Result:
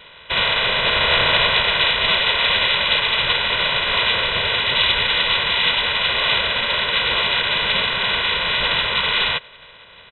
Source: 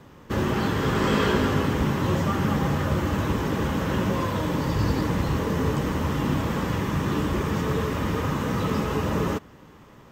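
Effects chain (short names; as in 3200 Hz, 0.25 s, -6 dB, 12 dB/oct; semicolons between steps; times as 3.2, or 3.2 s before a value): spectral limiter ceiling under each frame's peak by 26 dB; comb 2.1 ms, depth 62%; inverted band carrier 3900 Hz; gain +4.5 dB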